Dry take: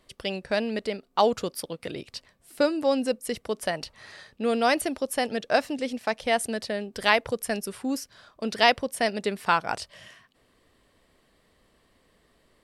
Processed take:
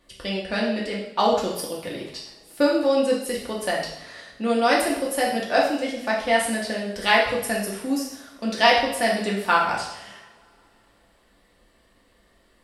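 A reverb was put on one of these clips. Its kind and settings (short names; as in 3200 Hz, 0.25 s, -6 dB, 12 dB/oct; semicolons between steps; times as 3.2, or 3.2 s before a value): two-slope reverb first 0.73 s, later 3.2 s, from -26 dB, DRR -4 dB; gain -1.5 dB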